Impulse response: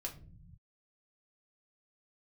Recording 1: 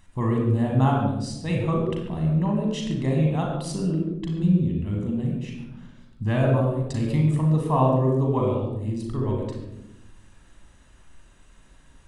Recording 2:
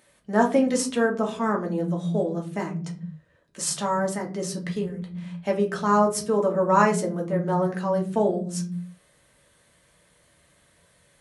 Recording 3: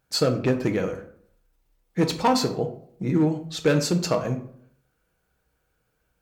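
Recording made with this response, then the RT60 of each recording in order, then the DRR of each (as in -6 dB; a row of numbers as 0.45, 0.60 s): 2; 0.90 s, not exponential, 0.60 s; -0.5, 0.0, 5.0 dB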